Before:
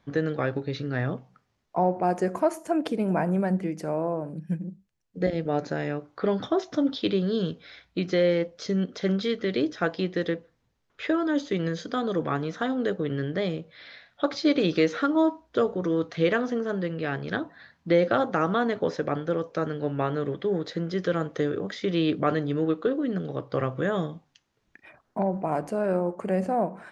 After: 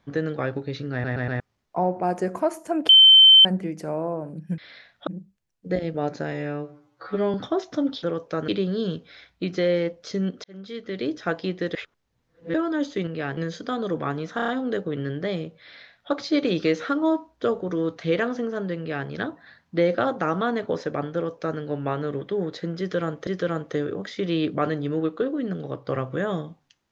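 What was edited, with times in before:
0.92 stutter in place 0.12 s, 4 plays
2.89–3.45 bleep 3090 Hz -8 dBFS
5.83–6.34 stretch 2×
8.99–9.77 fade in
10.3–11.09 reverse
12.61 stutter 0.03 s, 5 plays
13.75–14.24 copy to 4.58
16.91–17.21 copy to 11.62
19.27–19.72 copy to 7.03
20.92–21.4 loop, 2 plays

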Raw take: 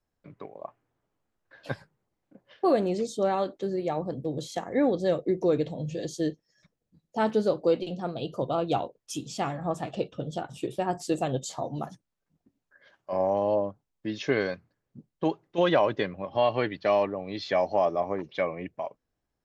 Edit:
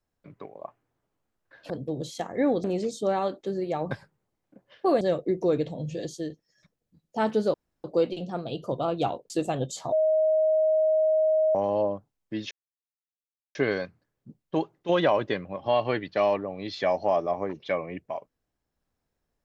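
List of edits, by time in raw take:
1.7–2.8 swap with 4.07–5.01
6.03–6.3 fade out, to -7.5 dB
7.54 insert room tone 0.30 s
9–11.03 cut
11.65–13.28 bleep 628 Hz -19 dBFS
14.24 insert silence 1.04 s

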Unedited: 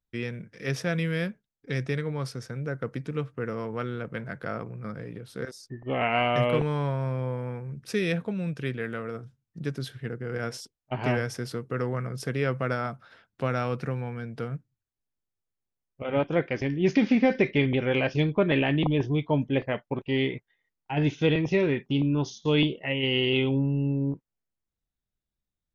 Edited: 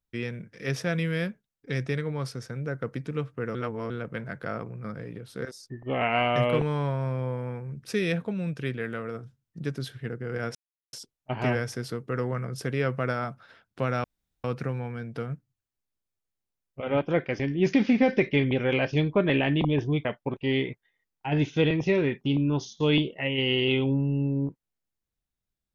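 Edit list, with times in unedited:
3.55–3.9 reverse
10.55 insert silence 0.38 s
13.66 insert room tone 0.40 s
19.27–19.7 cut

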